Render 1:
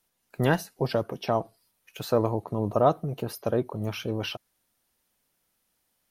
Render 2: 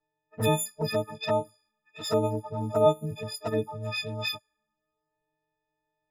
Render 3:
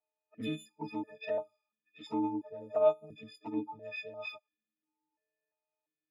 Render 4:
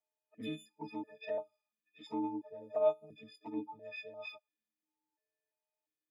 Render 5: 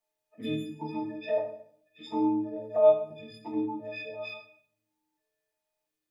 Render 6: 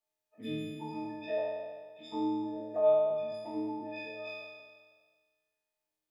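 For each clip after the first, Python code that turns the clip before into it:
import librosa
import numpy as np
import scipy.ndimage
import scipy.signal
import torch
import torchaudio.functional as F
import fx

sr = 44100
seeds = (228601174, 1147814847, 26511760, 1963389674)

y1 = fx.freq_snap(x, sr, grid_st=6)
y1 = fx.env_lowpass(y1, sr, base_hz=990.0, full_db=-21.5)
y1 = fx.env_flanger(y1, sr, rest_ms=6.8, full_db=-19.0)
y1 = y1 * librosa.db_to_amplitude(-1.5)
y2 = fx.dynamic_eq(y1, sr, hz=1800.0, q=1.5, threshold_db=-44.0, ratio=4.0, max_db=-4)
y2 = fx.cheby_harmonics(y2, sr, harmonics=(4, 7), levels_db=(-28, -38), full_scale_db=-9.5)
y2 = fx.vowel_held(y2, sr, hz=2.9)
y2 = y2 * librosa.db_to_amplitude(4.0)
y3 = fx.notch_comb(y2, sr, f0_hz=1400.0)
y3 = y3 * librosa.db_to_amplitude(-3.5)
y4 = fx.room_shoebox(y3, sr, seeds[0], volume_m3=95.0, walls='mixed', distance_m=0.84)
y4 = y4 * librosa.db_to_amplitude(4.0)
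y5 = fx.spec_trails(y4, sr, decay_s=1.58)
y5 = y5 * librosa.db_to_amplitude(-6.5)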